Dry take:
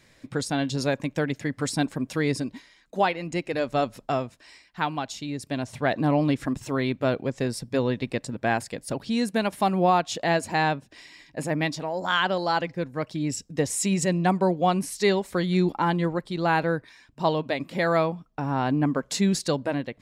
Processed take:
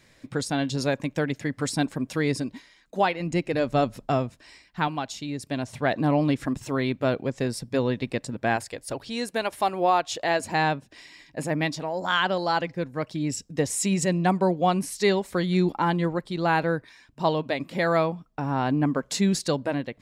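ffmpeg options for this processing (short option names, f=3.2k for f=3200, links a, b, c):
-filter_complex "[0:a]asettb=1/sr,asplit=3[a][b][c];[a]atrim=end=3.204[d];[b]atrim=start=3.2:end=4.88,asetpts=PTS-STARTPTS,afade=t=in:d=0.004:c=qsin,afade=t=out:st=1.676:d=0.004:c=qsin,lowshelf=f=290:g=7[e];[c]atrim=start=4.876[f];[d][e]acrossfade=d=0.004:c1=hsin:c2=qsin[g];[g][f]acrossfade=d=0.004:c1=qsin:c2=hsin,asettb=1/sr,asplit=3[h][i][j];[h]atrim=end=8.564[k];[i]atrim=start=8.56:end=10.4,asetpts=PTS-STARTPTS,afade=t=in:d=0.004:c=qsin,afade=t=out:st=1.836:d=0.004:c=qsin,equalizer=f=190:t=o:w=0.77:g=-13[l];[j]atrim=start=10.396[m];[k][l]acrossfade=d=0.004:c1=hsin:c2=qsin[n];[n][m]acrossfade=d=0.004:c1=qsin:c2=hsin"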